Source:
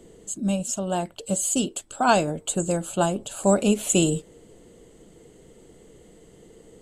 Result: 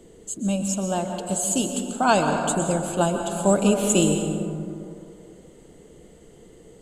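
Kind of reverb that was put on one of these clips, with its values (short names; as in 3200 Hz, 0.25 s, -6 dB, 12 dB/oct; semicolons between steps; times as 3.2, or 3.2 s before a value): plate-style reverb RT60 2.7 s, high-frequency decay 0.35×, pre-delay 0.11 s, DRR 4 dB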